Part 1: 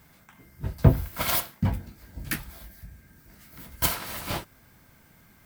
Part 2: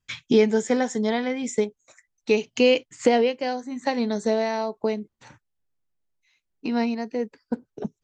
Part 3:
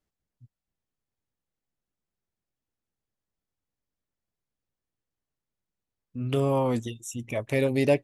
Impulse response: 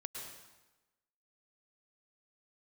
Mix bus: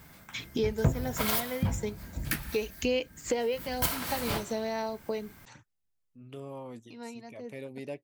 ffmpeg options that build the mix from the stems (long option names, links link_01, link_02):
-filter_complex "[0:a]volume=2.5dB,asplit=2[link_01][link_02];[link_02]volume=-11.5dB[link_03];[1:a]highshelf=frequency=3800:gain=6,aphaser=in_gain=1:out_gain=1:delay=2.2:decay=0.32:speed=1.1:type=sinusoidal,adelay=250,volume=-6dB[link_04];[2:a]highpass=130,volume=-17dB,asplit=2[link_05][link_06];[link_06]apad=whole_len=365301[link_07];[link_04][link_07]sidechaincompress=threshold=-59dB:ratio=3:attack=16:release=1300[link_08];[3:a]atrim=start_sample=2205[link_09];[link_03][link_09]afir=irnorm=-1:irlink=0[link_10];[link_01][link_08][link_05][link_10]amix=inputs=4:normalize=0,acompressor=threshold=-31dB:ratio=2"